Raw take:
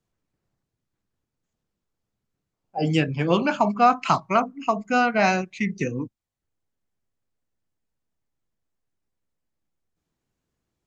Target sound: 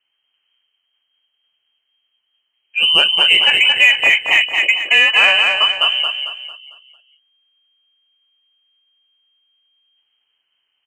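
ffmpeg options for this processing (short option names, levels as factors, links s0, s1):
-filter_complex "[0:a]lowpass=f=2700:t=q:w=0.5098,lowpass=f=2700:t=q:w=0.6013,lowpass=f=2700:t=q:w=0.9,lowpass=f=2700:t=q:w=2.563,afreqshift=-3200,asplit=2[s0][s1];[s1]asoftclip=type=tanh:threshold=0.158,volume=0.631[s2];[s0][s2]amix=inputs=2:normalize=0,aecho=1:1:225|450|675|900|1125:0.562|0.225|0.09|0.036|0.0144,alimiter=level_in=2:limit=0.891:release=50:level=0:latency=1,volume=0.891"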